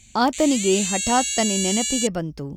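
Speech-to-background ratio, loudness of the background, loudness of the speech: 1.0 dB, −23.5 LKFS, −22.5 LKFS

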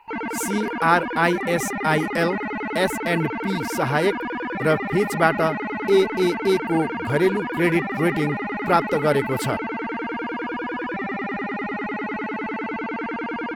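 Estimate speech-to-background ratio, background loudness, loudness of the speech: 4.5 dB, −27.5 LKFS, −23.0 LKFS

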